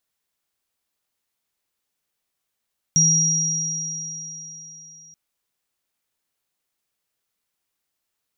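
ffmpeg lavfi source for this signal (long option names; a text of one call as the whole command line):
ffmpeg -f lavfi -i "aevalsrc='0.112*pow(10,-3*t/3.25)*sin(2*PI*161*t)+0.224*pow(10,-3*t/4.08)*sin(2*PI*5710*t)':duration=2.18:sample_rate=44100" out.wav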